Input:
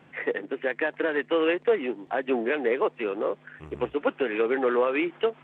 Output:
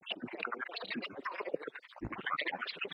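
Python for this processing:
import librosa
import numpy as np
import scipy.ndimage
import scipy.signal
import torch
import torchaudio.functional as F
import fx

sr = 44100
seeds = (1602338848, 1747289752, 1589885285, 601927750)

y = fx.spec_dropout(x, sr, seeds[0], share_pct=66)
y = fx.over_compress(y, sr, threshold_db=-37.0, ratio=-1.0)
y = fx.stretch_grains(y, sr, factor=0.54, grain_ms=61.0)
y = fx.echo_thinned(y, sr, ms=107, feedback_pct=16, hz=340.0, wet_db=-5)
y = fx.granulator(y, sr, seeds[1], grain_ms=100.0, per_s=14.0, spray_ms=28.0, spread_st=7)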